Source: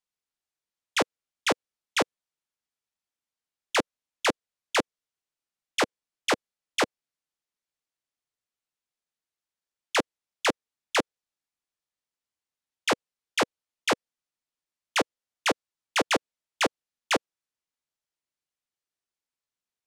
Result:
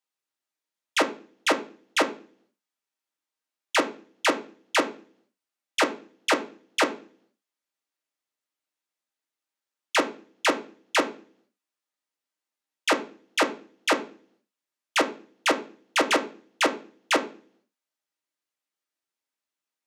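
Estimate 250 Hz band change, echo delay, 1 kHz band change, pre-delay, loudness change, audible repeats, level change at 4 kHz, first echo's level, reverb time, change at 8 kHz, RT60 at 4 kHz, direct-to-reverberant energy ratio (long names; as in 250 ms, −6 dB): +3.5 dB, no echo audible, +3.0 dB, 3 ms, +2.5 dB, no echo audible, +1.5 dB, no echo audible, 0.45 s, +1.0 dB, 0.45 s, 2.0 dB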